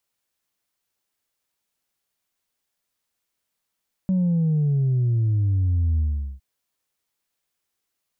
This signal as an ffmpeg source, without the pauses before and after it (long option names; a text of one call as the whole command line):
ffmpeg -f lavfi -i "aevalsrc='0.126*clip((2.31-t)/0.41,0,1)*tanh(1.12*sin(2*PI*190*2.31/log(65/190)*(exp(log(65/190)*t/2.31)-1)))/tanh(1.12)':duration=2.31:sample_rate=44100" out.wav